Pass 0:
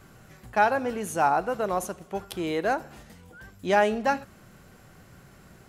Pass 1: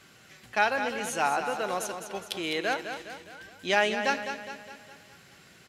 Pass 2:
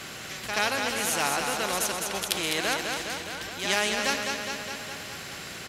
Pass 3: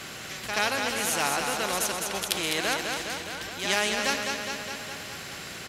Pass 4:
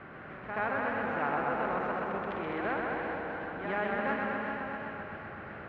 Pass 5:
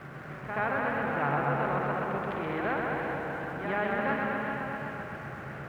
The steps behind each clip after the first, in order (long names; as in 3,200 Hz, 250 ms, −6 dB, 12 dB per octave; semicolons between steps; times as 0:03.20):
meter weighting curve D; on a send: repeating echo 206 ms, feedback 51%, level −8.5 dB; on the sum: level −4.5 dB
backwards echo 79 ms −12 dB; every bin compressed towards the loudest bin 2 to 1; level +5 dB
no processing that can be heard
low-pass filter 1,700 Hz 24 dB per octave; feedback echo with a swinging delay time 128 ms, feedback 76%, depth 70 cents, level −4 dB; level −4 dB
parametric band 140 Hz +15 dB 0.22 octaves; in parallel at −11 dB: centre clipping without the shift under −46 dBFS